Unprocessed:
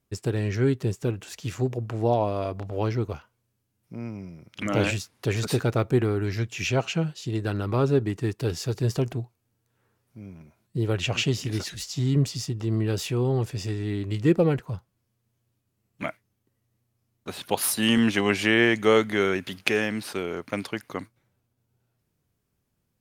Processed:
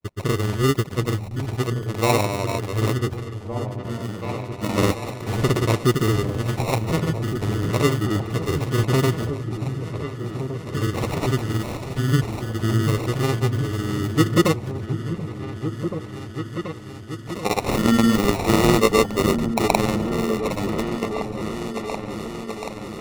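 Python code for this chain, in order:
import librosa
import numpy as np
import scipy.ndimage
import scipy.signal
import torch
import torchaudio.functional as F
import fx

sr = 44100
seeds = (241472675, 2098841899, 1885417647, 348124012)

p1 = fx.sample_hold(x, sr, seeds[0], rate_hz=1600.0, jitter_pct=0)
p2 = fx.granulator(p1, sr, seeds[1], grain_ms=100.0, per_s=20.0, spray_ms=100.0, spread_st=0)
p3 = p2 + fx.echo_opening(p2, sr, ms=732, hz=200, octaves=2, feedback_pct=70, wet_db=-6, dry=0)
y = F.gain(torch.from_numpy(p3), 4.5).numpy()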